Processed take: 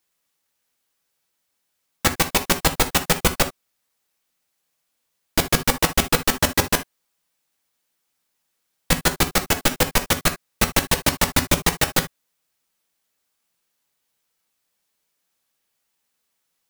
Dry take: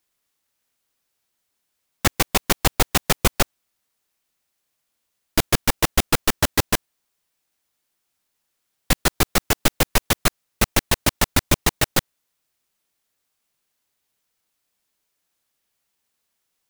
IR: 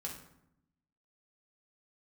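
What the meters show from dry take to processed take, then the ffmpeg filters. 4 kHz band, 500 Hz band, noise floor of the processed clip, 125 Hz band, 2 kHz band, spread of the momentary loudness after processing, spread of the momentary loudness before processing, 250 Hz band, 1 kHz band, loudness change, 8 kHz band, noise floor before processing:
+1.0 dB, +1.0 dB, -75 dBFS, -1.0 dB, +1.5 dB, 5 LU, 5 LU, +0.5 dB, +1.0 dB, +1.0 dB, +1.0 dB, -76 dBFS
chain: -filter_complex "[0:a]asplit=2[s0][s1];[1:a]atrim=start_sample=2205,atrim=end_sample=3528,lowshelf=f=130:g=-11[s2];[s1][s2]afir=irnorm=-1:irlink=0,volume=1.12[s3];[s0][s3]amix=inputs=2:normalize=0,volume=0.668"

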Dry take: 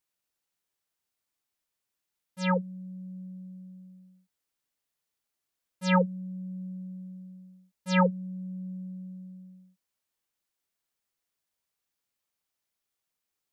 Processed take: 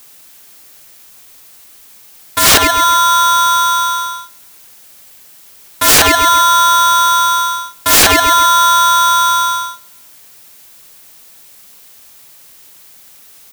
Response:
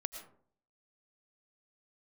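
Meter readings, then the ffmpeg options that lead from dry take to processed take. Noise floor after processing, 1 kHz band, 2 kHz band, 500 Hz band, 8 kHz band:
-42 dBFS, +27.5 dB, +22.5 dB, +13.0 dB, no reading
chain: -filter_complex "[0:a]highshelf=f=6300:g=-9.5,acrossover=split=360[s0][s1];[s0]acompressor=threshold=0.00631:ratio=6[s2];[s1]aemphasis=mode=production:type=75kf[s3];[s2][s3]amix=inputs=2:normalize=0,acontrast=88,bandreject=f=60:t=h:w=6,bandreject=f=120:t=h:w=6,bandreject=f=180:t=h:w=6,asplit=2[s4][s5];[s5]adelay=133,lowpass=f=2000:p=1,volume=0.0891,asplit=2[s6][s7];[s7]adelay=133,lowpass=f=2000:p=1,volume=0.38,asplit=2[s8][s9];[s9]adelay=133,lowpass=f=2000:p=1,volume=0.38[s10];[s4][s6][s8][s10]amix=inputs=4:normalize=0,aeval=exprs='(mod(12.6*val(0)+1,2)-1)/12.6':c=same,alimiter=level_in=31.6:limit=0.891:release=50:level=0:latency=1,aeval=exprs='val(0)*sgn(sin(2*PI*1200*n/s))':c=same,volume=0.891"

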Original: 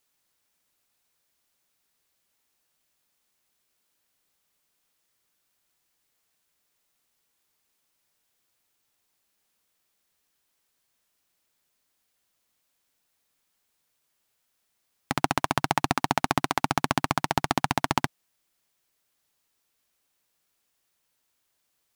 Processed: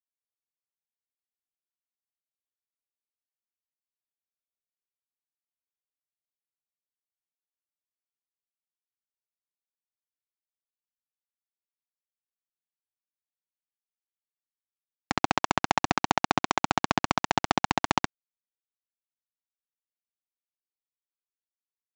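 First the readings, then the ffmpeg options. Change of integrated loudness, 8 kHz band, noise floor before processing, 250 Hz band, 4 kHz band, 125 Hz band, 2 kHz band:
-0.5 dB, -1.5 dB, -76 dBFS, -1.0 dB, +0.5 dB, -4.0 dB, 0.0 dB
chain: -af "highpass=f=110:p=1,aresample=16000,acrusher=bits=3:mix=0:aa=0.5,aresample=44100"

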